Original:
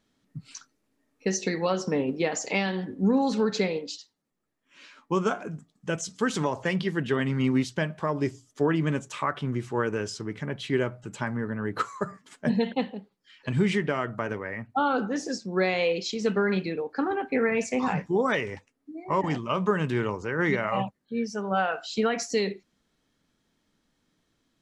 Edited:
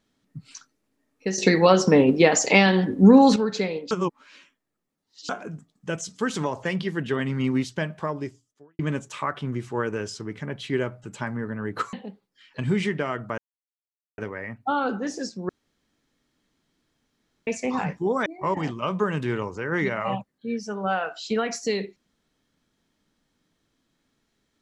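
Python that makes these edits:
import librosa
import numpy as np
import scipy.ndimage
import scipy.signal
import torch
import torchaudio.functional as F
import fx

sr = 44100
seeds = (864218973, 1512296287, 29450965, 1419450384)

y = fx.edit(x, sr, fx.clip_gain(start_s=1.38, length_s=1.98, db=10.0),
    fx.reverse_span(start_s=3.91, length_s=1.38),
    fx.fade_out_span(start_s=8.05, length_s=0.74, curve='qua'),
    fx.cut(start_s=11.93, length_s=0.89),
    fx.insert_silence(at_s=14.27, length_s=0.8),
    fx.room_tone_fill(start_s=15.58, length_s=1.98),
    fx.cut(start_s=18.35, length_s=0.58), tone=tone)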